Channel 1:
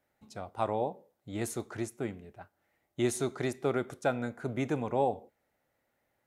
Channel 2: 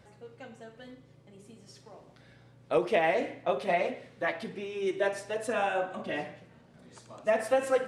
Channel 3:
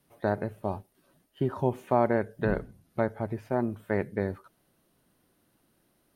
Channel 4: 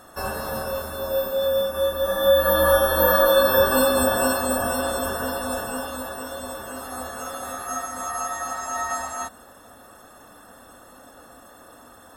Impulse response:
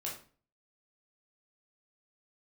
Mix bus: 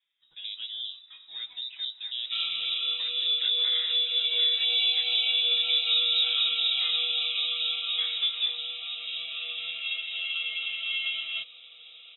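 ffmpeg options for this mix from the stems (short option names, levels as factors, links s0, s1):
-filter_complex "[0:a]highpass=340,aecho=1:1:6:0.95,alimiter=limit=0.0631:level=0:latency=1:release=208,volume=0.376[s0];[1:a]flanger=delay=16.5:depth=4:speed=0.89,adelay=700,volume=0.631[s1];[2:a]adelay=200,volume=0.15[s2];[3:a]bandreject=f=500:w=12,adelay=2150,volume=0.562[s3];[s0][s1][s2][s3]amix=inputs=4:normalize=0,equalizer=f=330:t=o:w=2.8:g=7,acrossover=split=260[s4][s5];[s5]acompressor=threshold=0.0631:ratio=6[s6];[s4][s6]amix=inputs=2:normalize=0,lowpass=f=3400:t=q:w=0.5098,lowpass=f=3400:t=q:w=0.6013,lowpass=f=3400:t=q:w=0.9,lowpass=f=3400:t=q:w=2.563,afreqshift=-4000"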